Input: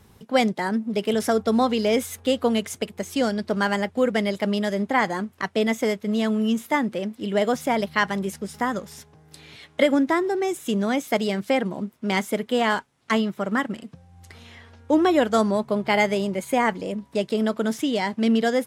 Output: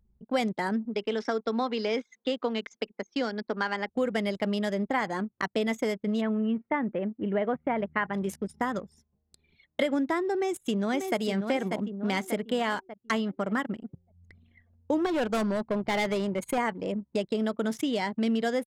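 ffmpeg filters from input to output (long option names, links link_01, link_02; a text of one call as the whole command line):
ffmpeg -i in.wav -filter_complex "[0:a]asettb=1/sr,asplit=3[link_01][link_02][link_03];[link_01]atrim=end=0.854[link_04];[link_02]atrim=start=0.85:end=3.89,asetpts=PTS-STARTPTS,afade=type=in:duration=0.004:curve=qsin,afade=type=out:start_time=3.036:duration=0.004:curve=qsin,highpass=frequency=250:width=0.5412,highpass=frequency=250:width=1.3066,equalizer=frequency=350:width_type=q:width=4:gain=-6,equalizer=frequency=620:width_type=q:width=4:gain=-7,equalizer=frequency=3000:width_type=q:width=4:gain=-3,lowpass=frequency=5700:width=0.5412,lowpass=frequency=5700:width=1.3066[link_05];[link_03]atrim=start=3.886[link_06];[link_04][link_05]acrossfade=duration=0.004:curve1=hsin:curve2=qsin[link_07];[link_07][link_06]acrossfade=duration=0.004:curve1=qsin:curve2=hsin,asplit=3[link_08][link_09][link_10];[link_08]afade=type=out:start_time=6.2:duration=0.02[link_11];[link_09]lowpass=frequency=2400:width=0.5412,lowpass=frequency=2400:width=1.3066,afade=type=in:start_time=6.2:duration=0.02,afade=type=out:start_time=8.13:duration=0.02[link_12];[link_10]afade=type=in:start_time=8.13:duration=0.02[link_13];[link_11][link_12][link_13]amix=inputs=3:normalize=0,asplit=2[link_14][link_15];[link_15]afade=type=in:start_time=10.34:duration=0.01,afade=type=out:start_time=11.2:duration=0.01,aecho=0:1:590|1180|1770|2360|2950|3540:0.446684|0.223342|0.111671|0.0558354|0.0279177|0.0139589[link_16];[link_14][link_16]amix=inputs=2:normalize=0,asettb=1/sr,asplit=3[link_17][link_18][link_19];[link_17]atrim=end=15.064[link_20];[link_18]atrim=start=15.06:end=16.58,asetpts=PTS-STARTPTS,afade=type=in:duration=0.004:curve=qsin,afade=type=out:start_time=1.516:duration=0.004:curve=qsin,volume=19.5dB,asoftclip=hard,volume=-19.5dB[link_21];[link_19]atrim=start=16.576[link_22];[link_20][link_21]acrossfade=duration=0.004:curve1=hsin:curve2=qsin[link_23];[link_23][link_22]acrossfade=duration=0.004:curve1=qsin:curve2=hsin,anlmdn=2.51,acompressor=threshold=-27dB:ratio=2.5" out.wav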